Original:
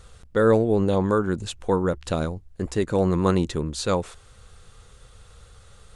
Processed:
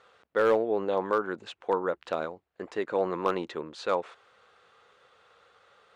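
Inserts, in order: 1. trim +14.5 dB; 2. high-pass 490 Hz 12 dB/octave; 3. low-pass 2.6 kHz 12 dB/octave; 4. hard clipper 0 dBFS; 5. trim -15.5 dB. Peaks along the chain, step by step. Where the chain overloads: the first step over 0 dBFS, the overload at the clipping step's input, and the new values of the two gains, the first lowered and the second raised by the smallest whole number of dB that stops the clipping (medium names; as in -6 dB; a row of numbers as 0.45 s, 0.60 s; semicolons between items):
+7.0 dBFS, +4.5 dBFS, +4.0 dBFS, 0.0 dBFS, -15.5 dBFS; step 1, 4.0 dB; step 1 +10.5 dB, step 5 -11.5 dB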